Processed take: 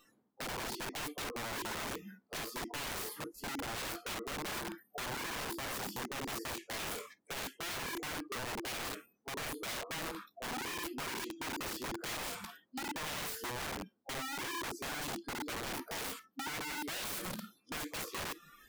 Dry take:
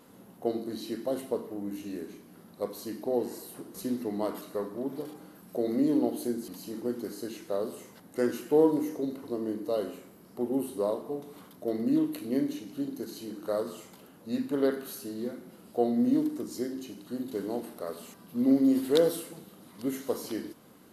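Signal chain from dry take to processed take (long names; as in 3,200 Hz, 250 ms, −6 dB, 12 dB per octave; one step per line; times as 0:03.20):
high-shelf EQ 3,500 Hz −12 dB
notch filter 530 Hz, Q 12
in parallel at −2 dB: brickwall limiter −24.5 dBFS, peak gain reduction 11 dB
on the sum: speed change +12%
reversed playback
downward compressor 6 to 1, threshold −39 dBFS, peak gain reduction 20.5 dB
reversed playback
noise reduction from a noise print of the clip's start 29 dB
wrap-around overflow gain 42.5 dB
level +7.5 dB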